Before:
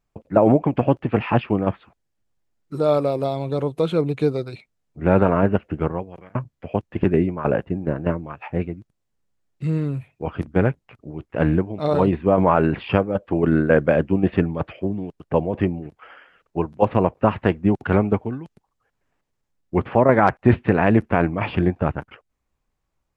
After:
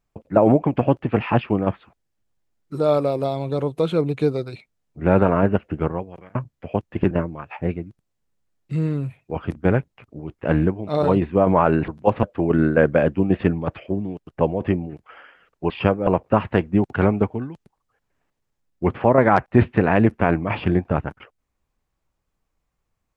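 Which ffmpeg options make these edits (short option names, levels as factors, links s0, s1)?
-filter_complex "[0:a]asplit=6[s0][s1][s2][s3][s4][s5];[s0]atrim=end=7.112[s6];[s1]atrim=start=8.018:end=12.792[s7];[s2]atrim=start=16.628:end=16.982[s8];[s3]atrim=start=13.158:end=16.632[s9];[s4]atrim=start=12.788:end=13.162[s10];[s5]atrim=start=16.978[s11];[s6][s7]acrossfade=d=0.004:c1=hsin:c2=hsin[s12];[s12][s8]acrossfade=d=0.004:c1=hsin:c2=hsin[s13];[s13][s9]acrossfade=d=0.004:c1=hsin:c2=hsin[s14];[s14][s10]acrossfade=d=0.004:c1=hsin:c2=hsin[s15];[s15][s11]acrossfade=d=0.004:c1=hsin:c2=hsin"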